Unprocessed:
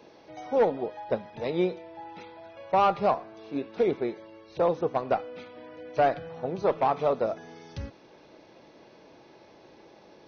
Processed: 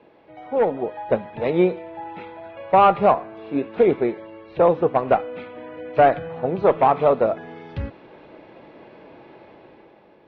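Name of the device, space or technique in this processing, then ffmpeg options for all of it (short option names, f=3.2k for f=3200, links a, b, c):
action camera in a waterproof case: -af "lowpass=f=3k:w=0.5412,lowpass=f=3k:w=1.3066,dynaudnorm=f=140:g=11:m=8.5dB" -ar 24000 -c:a aac -b:a 48k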